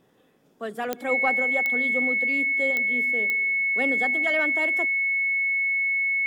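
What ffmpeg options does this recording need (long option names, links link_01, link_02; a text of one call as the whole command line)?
ffmpeg -i in.wav -af "adeclick=threshold=4,bandreject=frequency=2200:width=30" out.wav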